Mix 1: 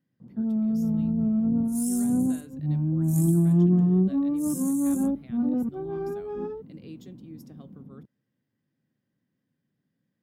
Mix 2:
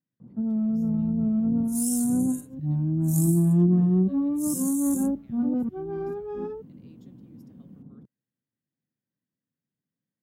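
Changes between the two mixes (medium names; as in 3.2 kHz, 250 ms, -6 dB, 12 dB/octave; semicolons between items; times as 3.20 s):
speech -12.0 dB; second sound +5.0 dB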